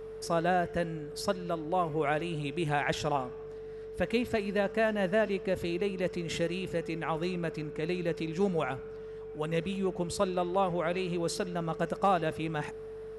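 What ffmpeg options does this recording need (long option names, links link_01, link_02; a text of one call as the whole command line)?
ffmpeg -i in.wav -af "bandreject=frequency=48.3:width_type=h:width=4,bandreject=frequency=96.6:width_type=h:width=4,bandreject=frequency=144.9:width_type=h:width=4,bandreject=frequency=193.2:width_type=h:width=4,bandreject=frequency=440:width=30" out.wav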